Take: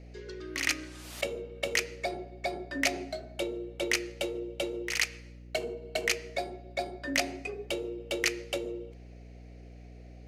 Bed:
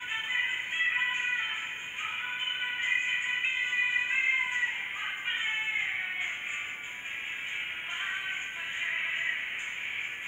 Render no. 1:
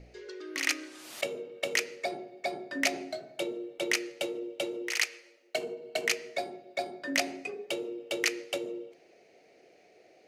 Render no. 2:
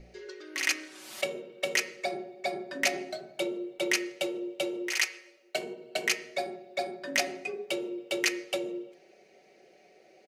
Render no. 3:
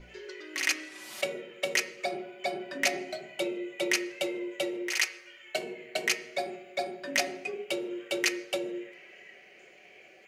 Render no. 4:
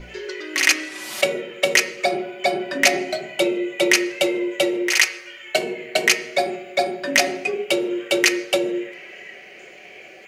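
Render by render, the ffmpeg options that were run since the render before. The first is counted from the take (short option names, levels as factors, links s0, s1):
-af "bandreject=f=60:t=h:w=4,bandreject=f=120:t=h:w=4,bandreject=f=180:t=h:w=4,bandreject=f=240:t=h:w=4,bandreject=f=300:t=h:w=4,bandreject=f=360:t=h:w=4,bandreject=f=420:t=h:w=4,bandreject=f=480:t=h:w=4,bandreject=f=540:t=h:w=4"
-af "aecho=1:1:5.3:0.6,bandreject=f=185.2:t=h:w=4,bandreject=f=370.4:t=h:w=4,bandreject=f=555.6:t=h:w=4,bandreject=f=740.8:t=h:w=4,bandreject=f=926:t=h:w=4,bandreject=f=1111.2:t=h:w=4,bandreject=f=1296.4:t=h:w=4,bandreject=f=1481.6:t=h:w=4,bandreject=f=1666.8:t=h:w=4,bandreject=f=1852:t=h:w=4,bandreject=f=2037.2:t=h:w=4,bandreject=f=2222.4:t=h:w=4,bandreject=f=2407.6:t=h:w=4,bandreject=f=2592.8:t=h:w=4,bandreject=f=2778:t=h:w=4,bandreject=f=2963.2:t=h:w=4,bandreject=f=3148.4:t=h:w=4,bandreject=f=3333.6:t=h:w=4"
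-filter_complex "[1:a]volume=0.0891[s0];[0:a][s0]amix=inputs=2:normalize=0"
-af "volume=3.98,alimiter=limit=0.794:level=0:latency=1"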